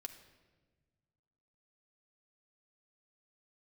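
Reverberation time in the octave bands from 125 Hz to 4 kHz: 2.2 s, 2.0 s, 1.6 s, 1.2 s, 1.1 s, 0.95 s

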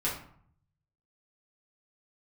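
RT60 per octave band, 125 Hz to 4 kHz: 1.2 s, 0.75 s, 0.55 s, 0.60 s, 0.50 s, 0.35 s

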